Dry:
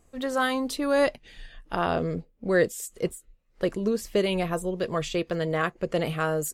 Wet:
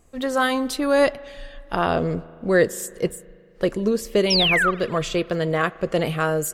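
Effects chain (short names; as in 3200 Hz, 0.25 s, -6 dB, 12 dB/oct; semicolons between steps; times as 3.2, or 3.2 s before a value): painted sound fall, 4.3–4.71, 1100–5800 Hz -24 dBFS; spring tank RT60 2.3 s, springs 37 ms, chirp 55 ms, DRR 19.5 dB; gain +4.5 dB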